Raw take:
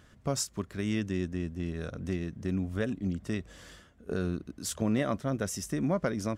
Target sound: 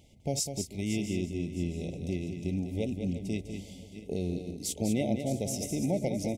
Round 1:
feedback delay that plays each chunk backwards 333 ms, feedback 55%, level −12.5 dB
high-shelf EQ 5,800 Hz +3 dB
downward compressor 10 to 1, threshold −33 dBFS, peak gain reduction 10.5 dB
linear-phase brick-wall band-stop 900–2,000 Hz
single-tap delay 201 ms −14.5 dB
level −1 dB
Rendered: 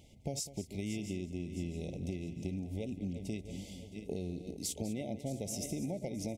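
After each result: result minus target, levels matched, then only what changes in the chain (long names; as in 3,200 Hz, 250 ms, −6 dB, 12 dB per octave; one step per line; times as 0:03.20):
downward compressor: peak gain reduction +10.5 dB; echo-to-direct −7 dB
remove: downward compressor 10 to 1, threshold −33 dBFS, peak gain reduction 10.5 dB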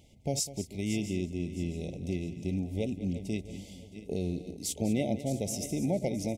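echo-to-direct −7 dB
change: single-tap delay 201 ms −7.5 dB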